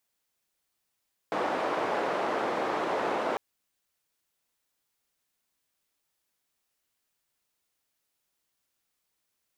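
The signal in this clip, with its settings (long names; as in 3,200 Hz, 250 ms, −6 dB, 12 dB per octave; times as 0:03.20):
band-limited noise 390–780 Hz, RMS −29.5 dBFS 2.05 s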